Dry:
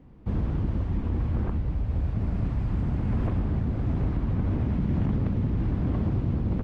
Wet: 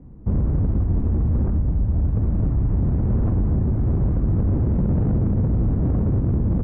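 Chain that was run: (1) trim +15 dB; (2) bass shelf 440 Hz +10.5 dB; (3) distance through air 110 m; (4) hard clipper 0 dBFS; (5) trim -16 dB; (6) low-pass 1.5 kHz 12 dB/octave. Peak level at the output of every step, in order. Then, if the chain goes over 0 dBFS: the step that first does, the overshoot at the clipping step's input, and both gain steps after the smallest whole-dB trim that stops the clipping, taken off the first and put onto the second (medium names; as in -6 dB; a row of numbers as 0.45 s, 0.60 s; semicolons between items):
-0.5 dBFS, +8.5 dBFS, +8.5 dBFS, 0.0 dBFS, -16.0 dBFS, -16.0 dBFS; step 2, 8.5 dB; step 1 +6 dB, step 5 -7 dB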